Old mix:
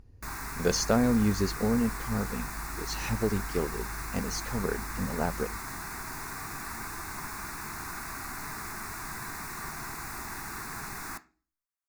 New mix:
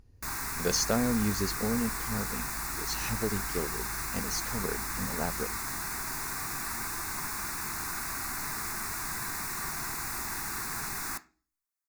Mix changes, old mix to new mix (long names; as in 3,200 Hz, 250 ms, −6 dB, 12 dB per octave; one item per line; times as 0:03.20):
speech −4.0 dB
master: add high-shelf EQ 2,900 Hz +7 dB